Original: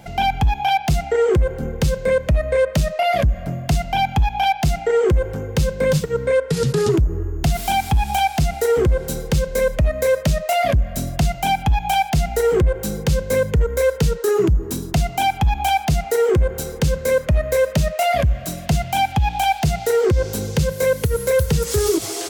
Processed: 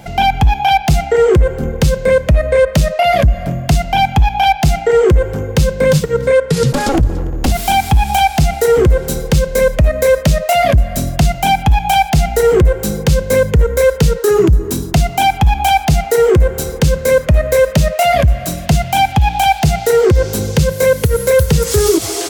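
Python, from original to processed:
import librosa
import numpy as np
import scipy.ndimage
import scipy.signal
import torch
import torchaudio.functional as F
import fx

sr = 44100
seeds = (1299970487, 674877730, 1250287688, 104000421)

p1 = fx.lower_of_two(x, sr, delay_ms=3.7, at=(6.72, 7.52))
p2 = p1 + fx.echo_single(p1, sr, ms=288, db=-21.5, dry=0)
y = p2 * 10.0 ** (6.5 / 20.0)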